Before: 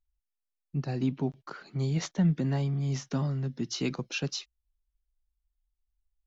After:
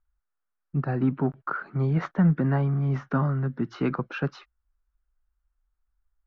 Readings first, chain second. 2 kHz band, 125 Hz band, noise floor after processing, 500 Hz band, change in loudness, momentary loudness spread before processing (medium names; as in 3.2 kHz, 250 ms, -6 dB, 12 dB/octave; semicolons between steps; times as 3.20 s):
+6.0 dB, +4.5 dB, -81 dBFS, +5.5 dB, +4.5 dB, 9 LU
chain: in parallel at -3 dB: overload inside the chain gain 20.5 dB; on the sum: resonant low-pass 1.4 kHz, resonance Q 3.3